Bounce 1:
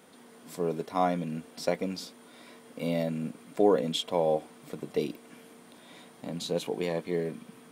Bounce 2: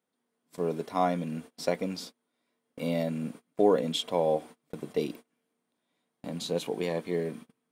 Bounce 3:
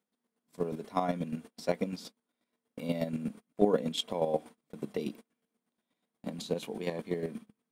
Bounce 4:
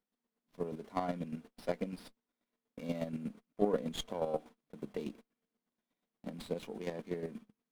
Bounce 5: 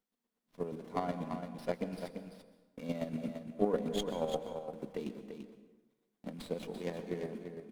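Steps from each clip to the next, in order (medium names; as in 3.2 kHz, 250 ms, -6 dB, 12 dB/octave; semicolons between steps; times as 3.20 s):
gate -43 dBFS, range -28 dB
peaking EQ 210 Hz +9 dB 0.23 oct; square tremolo 8.3 Hz, depth 60%, duty 25%
sliding maximum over 5 samples; trim -5 dB
delay 340 ms -7.5 dB; plate-style reverb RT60 1.2 s, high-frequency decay 0.6×, pre-delay 110 ms, DRR 11 dB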